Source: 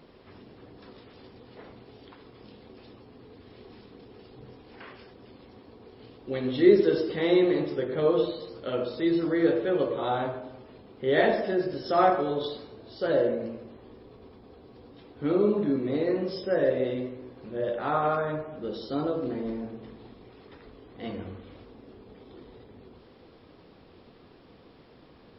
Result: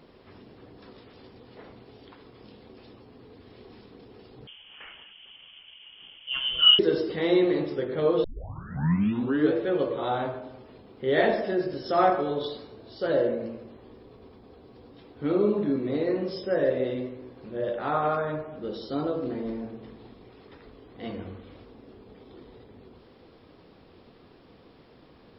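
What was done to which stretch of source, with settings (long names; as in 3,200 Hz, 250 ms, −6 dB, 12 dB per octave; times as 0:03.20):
0:04.47–0:06.79: voice inversion scrambler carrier 3,300 Hz
0:08.24: tape start 1.31 s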